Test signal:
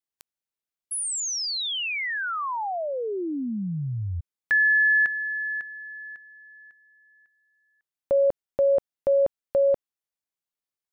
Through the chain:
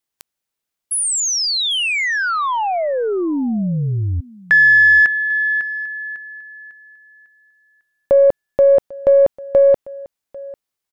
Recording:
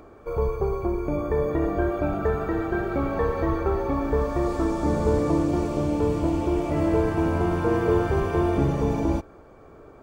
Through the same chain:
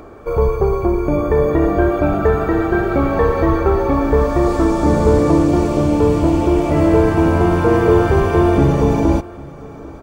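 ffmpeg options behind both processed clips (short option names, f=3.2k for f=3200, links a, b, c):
-af "acontrast=71,aecho=1:1:796:0.0891,aeval=exprs='0.631*(cos(1*acos(clip(val(0)/0.631,-1,1)))-cos(1*PI/2))+0.00447*(cos(6*acos(clip(val(0)/0.631,-1,1)))-cos(6*PI/2))':c=same,volume=3dB"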